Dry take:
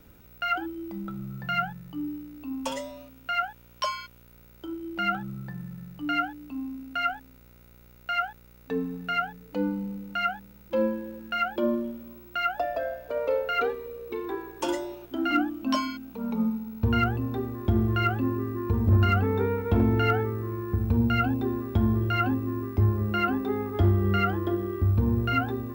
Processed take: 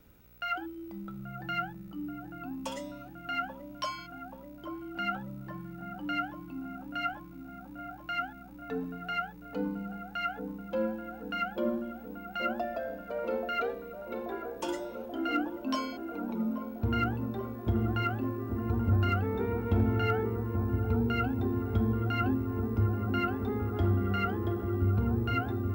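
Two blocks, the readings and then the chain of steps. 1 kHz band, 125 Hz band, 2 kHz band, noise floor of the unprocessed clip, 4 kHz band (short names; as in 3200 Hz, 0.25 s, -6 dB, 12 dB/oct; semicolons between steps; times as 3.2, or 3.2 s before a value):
-5.5 dB, -4.5 dB, -6.0 dB, -53 dBFS, -6.0 dB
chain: dark delay 0.832 s, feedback 73%, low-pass 1000 Hz, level -7 dB; gain -6 dB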